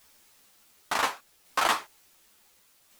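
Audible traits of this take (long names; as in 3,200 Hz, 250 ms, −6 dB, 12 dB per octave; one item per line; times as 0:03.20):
a quantiser's noise floor 10 bits, dither triangular
tremolo saw down 0.69 Hz, depth 35%
a shimmering, thickened sound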